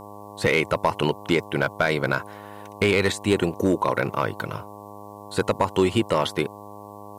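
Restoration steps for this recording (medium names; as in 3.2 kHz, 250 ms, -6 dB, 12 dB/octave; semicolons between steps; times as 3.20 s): clip repair -10.5 dBFS; de-hum 102.9 Hz, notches 11; expander -33 dBFS, range -21 dB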